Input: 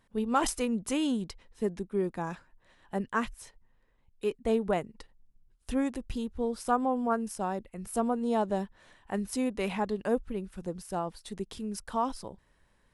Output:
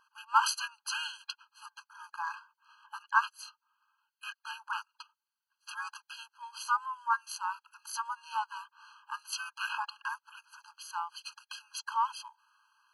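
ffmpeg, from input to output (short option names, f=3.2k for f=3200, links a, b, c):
-filter_complex "[0:a]asplit=3[a][b][c];[b]asetrate=22050,aresample=44100,atempo=2,volume=-7dB[d];[c]asetrate=29433,aresample=44100,atempo=1.49831,volume=0dB[e];[a][d][e]amix=inputs=3:normalize=0,equalizer=f=1.6k:t=o:w=0.33:g=6,equalizer=f=4k:t=o:w=0.33:g=8,equalizer=f=8k:t=o:w=0.33:g=-9,afftfilt=real='re*eq(mod(floor(b*sr/1024/820),2),1)':imag='im*eq(mod(floor(b*sr/1024/820),2),1)':win_size=1024:overlap=0.75,volume=2dB"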